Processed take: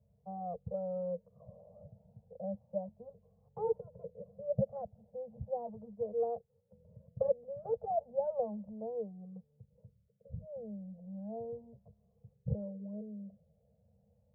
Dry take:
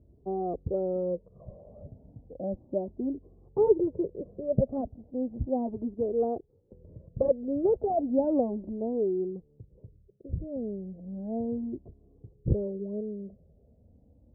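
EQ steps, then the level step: HPF 110 Hz 12 dB/oct; Chebyshev band-stop 210–460 Hz, order 4; -5.0 dB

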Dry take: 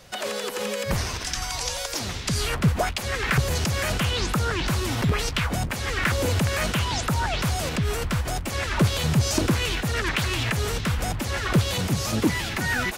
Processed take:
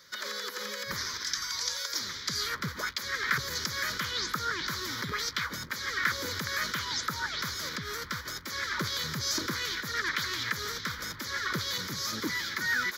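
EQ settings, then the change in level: HPF 980 Hz 6 dB/oct; fixed phaser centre 2700 Hz, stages 6; 0.0 dB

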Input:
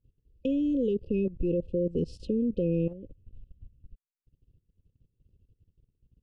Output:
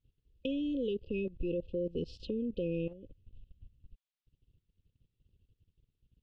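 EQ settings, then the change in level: dynamic EQ 170 Hz, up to -4 dB, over -39 dBFS, Q 1.1; air absorption 100 m; bell 3400 Hz +13.5 dB 1.4 oct; -5.5 dB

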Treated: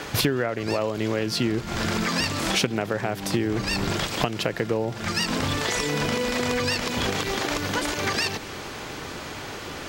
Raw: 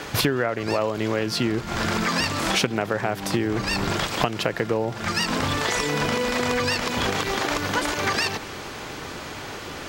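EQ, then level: dynamic EQ 1100 Hz, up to -4 dB, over -36 dBFS, Q 0.76; 0.0 dB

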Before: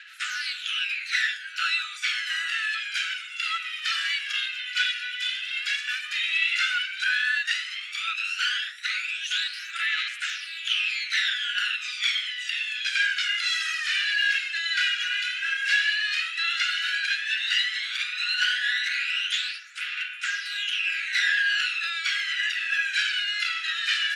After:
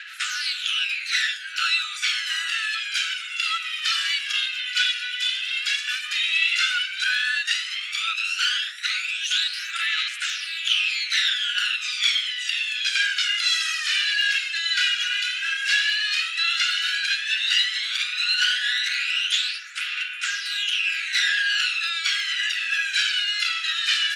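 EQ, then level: dynamic EQ 1800 Hz, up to -8 dB, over -39 dBFS, Q 1.1; +7.5 dB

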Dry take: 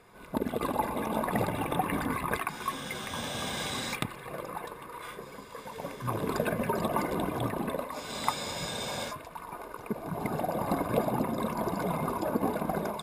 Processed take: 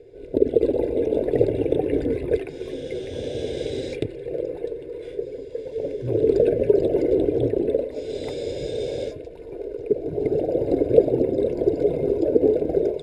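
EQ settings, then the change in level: air absorption 96 m; resonant low shelf 620 Hz +11.5 dB, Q 3; fixed phaser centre 480 Hz, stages 4; 0.0 dB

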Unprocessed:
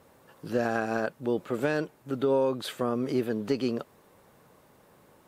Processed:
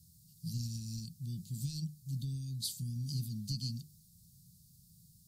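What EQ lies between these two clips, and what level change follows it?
Chebyshev band-stop 170–4500 Hz, order 4; notches 50/100/150/200/250/300/350/400 Hz; +5.0 dB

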